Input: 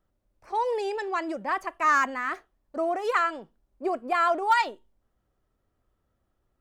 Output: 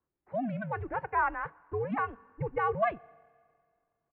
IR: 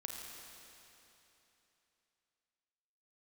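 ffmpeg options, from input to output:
-filter_complex "[0:a]highpass=f=250:t=q:w=0.5412,highpass=f=250:t=q:w=1.307,lowpass=f=2.7k:t=q:w=0.5176,lowpass=f=2.7k:t=q:w=0.7071,lowpass=f=2.7k:t=q:w=1.932,afreqshift=-230,asplit=2[a][b];[1:a]atrim=start_sample=2205,highshelf=f=5.5k:g=-4[c];[b][c]afir=irnorm=-1:irlink=0,volume=-19dB[d];[a][d]amix=inputs=2:normalize=0,atempo=1.6,volume=-5.5dB"

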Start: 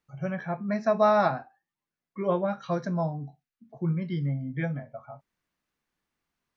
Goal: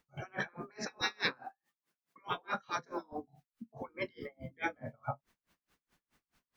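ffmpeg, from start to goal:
-filter_complex "[0:a]asettb=1/sr,asplit=3[a][b][c];[a]atrim=end=1.014[d];[b]atrim=start=1.01:end=3.13,asetpts=PTS-STARTPTS,afade=t=in:d=0.004:c=qsin,afade=t=out:st=2.116:d=0.004:c=qsin,highpass=f=260:p=1[e];[c]atrim=start=3.126[f];[d][e]acrossfade=d=0.004:c1=hsin:c2=qsin[g];[g][f]acrossfade=d=0.004:c1=qsin:c2=hsin,afftfilt=real='re*lt(hypot(re,im),0.0631)':imag='im*lt(hypot(re,im),0.0631)':win_size=1024:overlap=0.75,aeval=exprs='val(0)*pow(10,-35*(0.5-0.5*cos(2*PI*4.7*n/s))/20)':c=same,volume=12.5dB"

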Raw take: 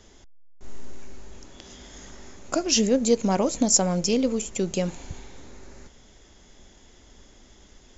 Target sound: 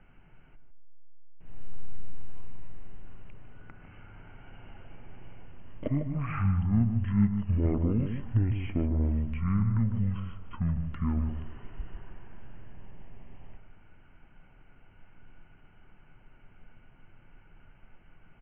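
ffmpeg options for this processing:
-filter_complex "[0:a]lowpass=f=5.3k:w=0.5412,lowpass=f=5.3k:w=1.3066,asetrate=19095,aresample=44100,acrossover=split=1500[a][b];[b]acompressor=threshold=-54dB:ratio=6[c];[a][c]amix=inputs=2:normalize=0,lowshelf=f=60:g=7,asplit=2[d][e];[e]adelay=152,lowpass=f=1.3k:p=1,volume=-7dB,asplit=2[f][g];[g]adelay=152,lowpass=f=1.3k:p=1,volume=0.22,asplit=2[h][i];[i]adelay=152,lowpass=f=1.3k:p=1,volume=0.22[j];[d][f][h][j]amix=inputs=4:normalize=0,volume=-6dB"

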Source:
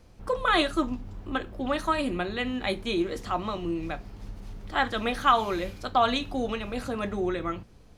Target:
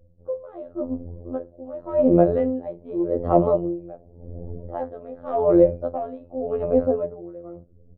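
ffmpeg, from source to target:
-af "afftdn=nr=22:nf=-48,dynaudnorm=f=530:g=7:m=15.5dB,aeval=exprs='0.944*sin(PI/2*2.82*val(0)/0.944)':c=same,afftfilt=real='hypot(re,im)*cos(PI*b)':imag='0':win_size=2048:overlap=0.75,lowpass=f=550:t=q:w=4.9,aeval=exprs='val(0)*pow(10,-21*(0.5-0.5*cos(2*PI*0.88*n/s))/20)':c=same,volume=-7dB"

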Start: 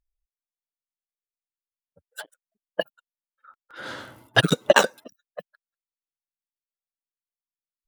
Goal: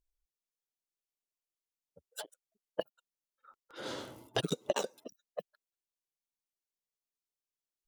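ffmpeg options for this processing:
-af "equalizer=f=100:t=o:w=0.67:g=-3,equalizer=f=400:t=o:w=0.67:g=6,equalizer=f=1.6k:t=o:w=0.67:g=-10,equalizer=f=6.3k:t=o:w=0.67:g=4,acompressor=threshold=-30dB:ratio=3,volume=-3dB"

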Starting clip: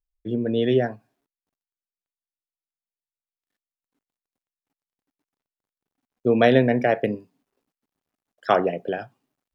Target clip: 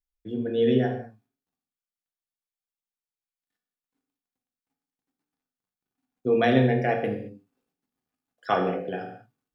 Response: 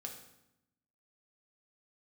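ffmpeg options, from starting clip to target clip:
-filter_complex "[0:a]equalizer=f=540:w=2.7:g=-4.5[a];[1:a]atrim=start_sample=2205,afade=t=out:st=0.28:d=0.01,atrim=end_sample=12789[b];[a][b]afir=irnorm=-1:irlink=0"

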